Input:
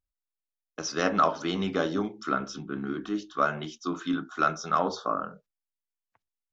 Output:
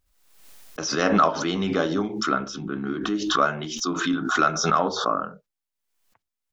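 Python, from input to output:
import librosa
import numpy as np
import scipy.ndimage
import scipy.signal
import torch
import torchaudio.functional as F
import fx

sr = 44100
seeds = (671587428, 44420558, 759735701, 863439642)

y = fx.pre_swell(x, sr, db_per_s=54.0)
y = y * 10.0 ** (3.5 / 20.0)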